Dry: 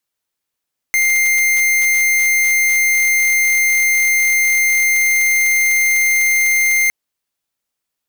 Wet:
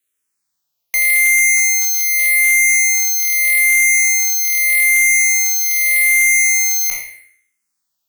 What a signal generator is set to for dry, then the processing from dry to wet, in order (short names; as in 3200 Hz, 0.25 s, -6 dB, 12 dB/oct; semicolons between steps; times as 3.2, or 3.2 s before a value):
tone square 2100 Hz -14 dBFS 5.96 s
spectral trails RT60 0.62 s; high shelf 4100 Hz +8.5 dB; endless phaser -0.82 Hz